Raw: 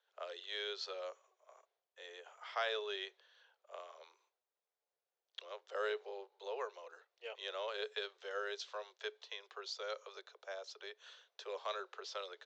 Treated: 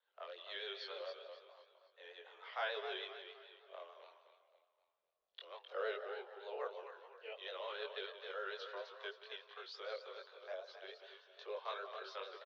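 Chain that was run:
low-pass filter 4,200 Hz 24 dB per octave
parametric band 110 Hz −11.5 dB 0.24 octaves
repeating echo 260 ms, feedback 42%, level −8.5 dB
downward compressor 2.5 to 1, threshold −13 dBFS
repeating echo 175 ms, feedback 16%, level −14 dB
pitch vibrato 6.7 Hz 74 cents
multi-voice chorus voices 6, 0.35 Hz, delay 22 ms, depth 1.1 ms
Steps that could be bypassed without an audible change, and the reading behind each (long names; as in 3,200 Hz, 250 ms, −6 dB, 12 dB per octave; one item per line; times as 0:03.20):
parametric band 110 Hz: nothing at its input below 340 Hz
downward compressor, threshold −13 dBFS: peak of its input −24.5 dBFS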